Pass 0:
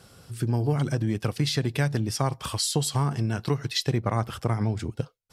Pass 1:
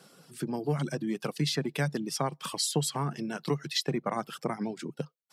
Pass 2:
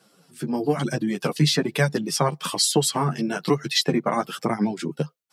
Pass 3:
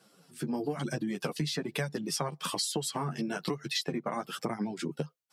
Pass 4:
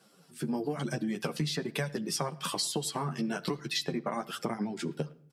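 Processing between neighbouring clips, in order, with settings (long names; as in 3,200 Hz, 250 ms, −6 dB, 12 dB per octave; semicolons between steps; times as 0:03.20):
reverb reduction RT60 0.63 s; elliptic high-pass filter 150 Hz, stop band 40 dB; level −1.5 dB
automatic gain control gain up to 12.5 dB; flanger 1.1 Hz, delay 8.7 ms, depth 4.4 ms, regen 0%
downward compressor, threshold −26 dBFS, peak gain reduction 11.5 dB; level −3.5 dB
far-end echo of a speakerphone 110 ms, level −23 dB; on a send at −15 dB: convolution reverb RT60 0.65 s, pre-delay 5 ms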